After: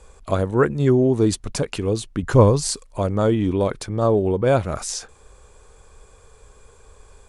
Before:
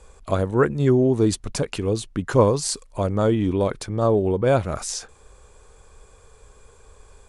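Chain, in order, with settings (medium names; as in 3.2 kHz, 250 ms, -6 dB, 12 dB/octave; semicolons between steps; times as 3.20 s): 2.23–2.73 s: bass shelf 120 Hz +11.5 dB; trim +1 dB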